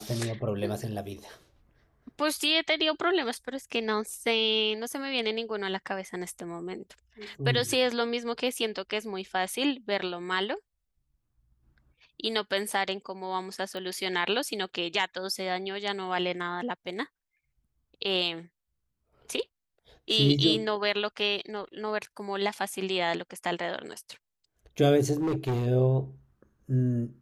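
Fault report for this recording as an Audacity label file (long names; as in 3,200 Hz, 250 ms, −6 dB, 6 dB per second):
13.770000	13.770000	click −25 dBFS
25.140000	25.670000	clipping −24.5 dBFS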